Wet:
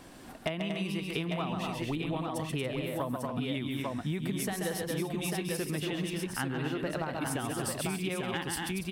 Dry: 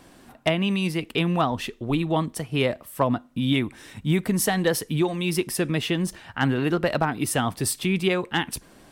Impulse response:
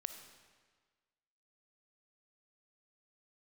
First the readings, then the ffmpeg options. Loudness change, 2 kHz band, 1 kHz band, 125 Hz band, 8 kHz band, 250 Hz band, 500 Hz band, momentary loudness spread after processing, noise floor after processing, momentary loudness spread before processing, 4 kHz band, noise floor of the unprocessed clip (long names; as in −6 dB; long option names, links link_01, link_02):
−9.0 dB, −8.5 dB, −9.0 dB, −8.5 dB, −8.0 dB, −9.0 dB, −9.0 dB, 1 LU, −45 dBFS, 5 LU, −8.5 dB, −52 dBFS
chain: -af "aecho=1:1:134|232|283|846:0.473|0.473|0.251|0.562,acompressor=threshold=-31dB:ratio=6"